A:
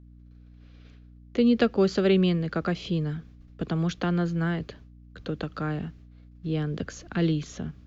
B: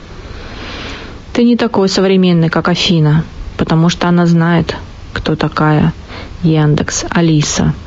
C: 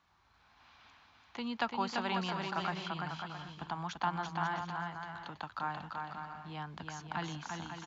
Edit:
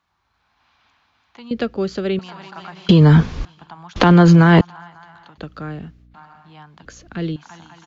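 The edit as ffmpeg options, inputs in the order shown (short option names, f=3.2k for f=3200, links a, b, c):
-filter_complex "[0:a]asplit=3[a][b][c];[1:a]asplit=2[d][e];[2:a]asplit=6[f][g][h][i][j][k];[f]atrim=end=1.512[l];[a]atrim=start=1.508:end=2.192[m];[g]atrim=start=2.188:end=2.892[n];[d]atrim=start=2.888:end=3.452[o];[h]atrim=start=3.448:end=3.962[p];[e]atrim=start=3.958:end=4.612[q];[i]atrim=start=4.608:end=5.382[r];[b]atrim=start=5.378:end=6.142[s];[j]atrim=start=6.138:end=6.852[t];[c]atrim=start=6.848:end=7.362[u];[k]atrim=start=7.358[v];[l][m]acrossfade=d=0.004:c1=hsin:c2=hsin[w];[w][n]acrossfade=d=0.004:c1=hsin:c2=hsin[x];[x][o]acrossfade=d=0.004:c1=hsin:c2=hsin[y];[y][p]acrossfade=d=0.004:c1=hsin:c2=hsin[z];[z][q]acrossfade=d=0.004:c1=hsin:c2=hsin[aa];[aa][r]acrossfade=d=0.004:c1=hsin:c2=hsin[ab];[ab][s]acrossfade=d=0.004:c1=hsin:c2=hsin[ac];[ac][t]acrossfade=d=0.004:c1=hsin:c2=hsin[ad];[ad][u]acrossfade=d=0.004:c1=hsin:c2=hsin[ae];[ae][v]acrossfade=d=0.004:c1=hsin:c2=hsin"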